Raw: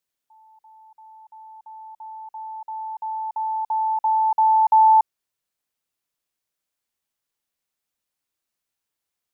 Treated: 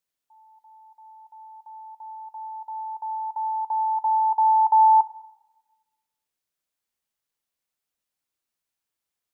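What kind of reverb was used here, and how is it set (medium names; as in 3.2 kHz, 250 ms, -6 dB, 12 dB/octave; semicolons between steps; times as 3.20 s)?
plate-style reverb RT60 1.1 s, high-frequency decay 1×, DRR 13 dB; trim -2.5 dB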